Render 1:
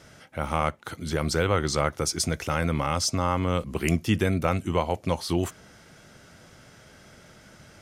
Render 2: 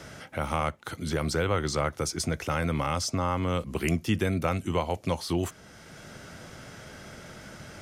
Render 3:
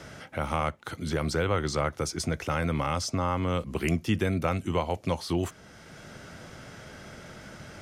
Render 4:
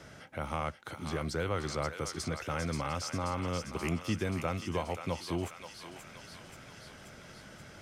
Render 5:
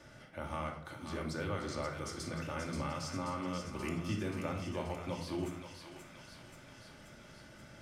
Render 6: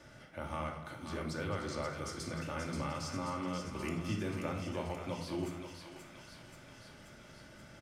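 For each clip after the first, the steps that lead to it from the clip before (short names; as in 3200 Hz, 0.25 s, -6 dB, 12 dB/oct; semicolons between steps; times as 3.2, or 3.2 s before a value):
three-band squash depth 40%; gain -2.5 dB
high shelf 7000 Hz -5 dB
thinning echo 0.531 s, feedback 72%, high-pass 1100 Hz, level -5.5 dB; gain -6.5 dB
reverb RT60 0.70 s, pre-delay 3 ms, DRR 1 dB; gain -7 dB
echo 0.215 s -13.5 dB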